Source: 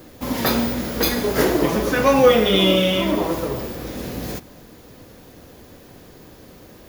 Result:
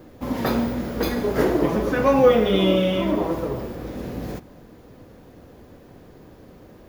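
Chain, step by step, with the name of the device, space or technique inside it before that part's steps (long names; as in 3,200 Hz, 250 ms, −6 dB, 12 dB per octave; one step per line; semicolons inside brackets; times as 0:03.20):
through cloth (high-shelf EQ 2,400 Hz −12.5 dB)
level −1 dB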